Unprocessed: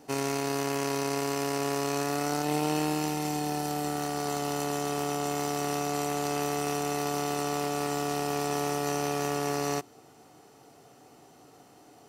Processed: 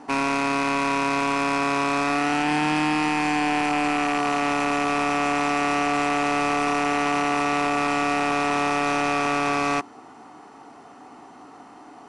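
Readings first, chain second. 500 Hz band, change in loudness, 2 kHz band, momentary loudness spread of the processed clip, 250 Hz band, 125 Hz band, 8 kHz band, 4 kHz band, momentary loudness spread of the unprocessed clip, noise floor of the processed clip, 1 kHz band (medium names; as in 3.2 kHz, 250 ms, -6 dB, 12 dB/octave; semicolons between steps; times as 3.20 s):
+3.0 dB, +7.5 dB, +13.5 dB, 1 LU, +7.5 dB, -0.5 dB, -1.5 dB, +5.5 dB, 2 LU, -46 dBFS, +9.5 dB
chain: rattle on loud lows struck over -40 dBFS, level -22 dBFS; graphic EQ 125/250/500/1000/2000 Hz -10/+8/-6/+11/+4 dB; hard clipper -24.5 dBFS, distortion -8 dB; brick-wall FIR low-pass 11 kHz; treble shelf 3.7 kHz -9 dB; trim +6.5 dB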